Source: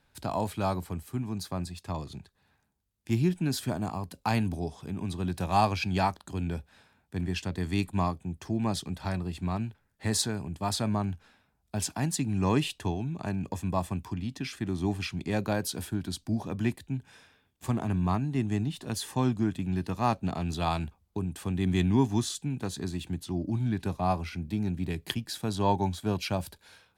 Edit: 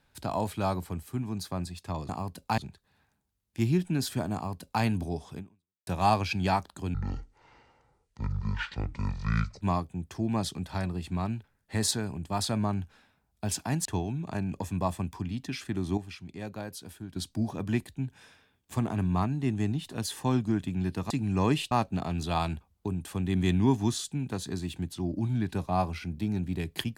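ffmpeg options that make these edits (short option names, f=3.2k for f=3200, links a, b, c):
-filter_complex "[0:a]asplit=11[a][b][c][d][e][f][g][h][i][j][k];[a]atrim=end=2.092[l];[b]atrim=start=3.848:end=4.342[m];[c]atrim=start=2.088:end=5.38,asetpts=PTS-STARTPTS,afade=t=out:st=2.802:d=0.49:c=exp[n];[d]atrim=start=5.38:end=6.454,asetpts=PTS-STARTPTS,afade=t=in:d=0.004:c=hsin[o];[e]atrim=start=6.45:end=7.92,asetpts=PTS-STARTPTS,asetrate=24255,aresample=44100,atrim=end_sample=117867,asetpts=PTS-STARTPTS[p];[f]atrim=start=7.916:end=12.162[q];[g]atrim=start=12.768:end=14.892[r];[h]atrim=start=14.888:end=16.082,asetpts=PTS-STARTPTS,volume=-9.5dB[s];[i]atrim=start=16.078:end=20.022[t];[j]atrim=start=12.158:end=12.772[u];[k]atrim=start=20.018[v];[l][m]acrossfade=d=0.004:c1=hsin:c2=hsin[w];[n][o]concat=n=2:v=0:a=1[x];[w][x]acrossfade=d=0.004:c1=hsin:c2=hsin[y];[y][p]acrossfade=d=0.004:c1=hsin:c2=hsin[z];[z][q]acrossfade=d=0.004:c1=hsin:c2=hsin[aa];[aa][r]acrossfade=d=0.004:c1=hsin:c2=hsin[ab];[ab][s]acrossfade=d=0.004:c1=hsin:c2=hsin[ac];[ac][t]acrossfade=d=0.004:c1=hsin:c2=hsin[ad];[ad][u]acrossfade=d=0.004:c1=hsin:c2=hsin[ae];[ae][v]acrossfade=d=0.004:c1=hsin:c2=hsin"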